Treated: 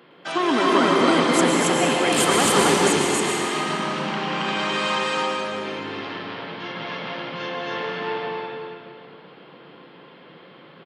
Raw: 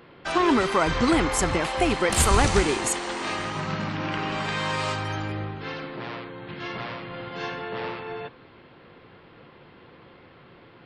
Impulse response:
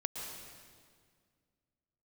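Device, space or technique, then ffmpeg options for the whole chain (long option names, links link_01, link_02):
stadium PA: -filter_complex "[0:a]highpass=frequency=160:width=0.5412,highpass=frequency=160:width=1.3066,equalizer=frequency=3200:width_type=o:width=0.2:gain=6,aecho=1:1:233.2|274.1:0.316|0.891[link_01];[1:a]atrim=start_sample=2205[link_02];[link_01][link_02]afir=irnorm=-1:irlink=0"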